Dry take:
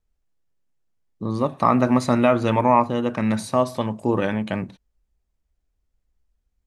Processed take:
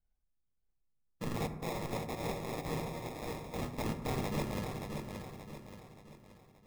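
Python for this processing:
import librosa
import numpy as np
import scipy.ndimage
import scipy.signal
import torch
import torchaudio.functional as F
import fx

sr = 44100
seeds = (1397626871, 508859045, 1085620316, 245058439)

y = fx.bit_reversed(x, sr, seeds[0], block=64)
y = fx.highpass(y, sr, hz=1100.0, slope=12, at=(1.47, 3.63))
y = fx.dereverb_blind(y, sr, rt60_s=0.83)
y = fx.lowpass(y, sr, hz=2100.0, slope=6)
y = fx.sample_hold(y, sr, seeds[1], rate_hz=1500.0, jitter_pct=0)
y = (np.mod(10.0 ** (24.0 / 20.0) * y + 1.0, 2.0) - 1.0) / 10.0 ** (24.0 / 20.0)
y = fx.echo_feedback(y, sr, ms=577, feedback_pct=44, wet_db=-6)
y = fx.rev_fdn(y, sr, rt60_s=1.3, lf_ratio=1.45, hf_ratio=0.35, size_ms=38.0, drr_db=7.0)
y = y * librosa.db_to_amplitude(-6.5)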